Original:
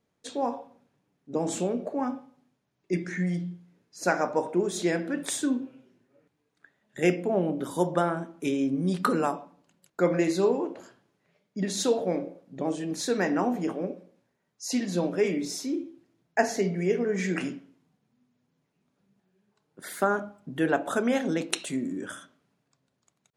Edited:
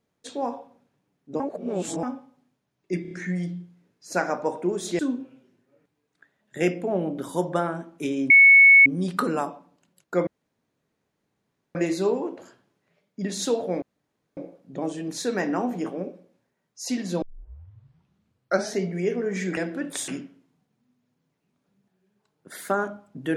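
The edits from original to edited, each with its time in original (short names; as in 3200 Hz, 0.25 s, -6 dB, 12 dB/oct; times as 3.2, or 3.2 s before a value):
1.4–2.03 reverse
3.02 stutter 0.03 s, 4 plays
4.9–5.41 move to 17.4
8.72 add tone 2210 Hz -9 dBFS 0.56 s
10.13 insert room tone 1.48 s
12.2 insert room tone 0.55 s
15.05 tape start 1.59 s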